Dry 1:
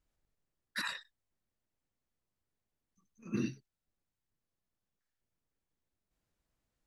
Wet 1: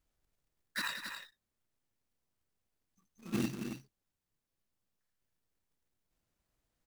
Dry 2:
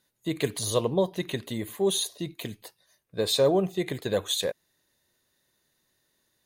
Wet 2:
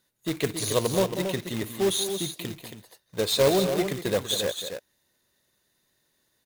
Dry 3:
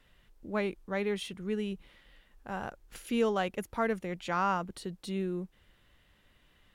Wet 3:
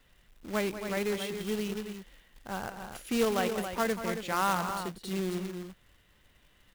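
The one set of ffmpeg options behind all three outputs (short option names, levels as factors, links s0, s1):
-af "aecho=1:1:189.5|274.1:0.282|0.398,acrusher=bits=2:mode=log:mix=0:aa=0.000001"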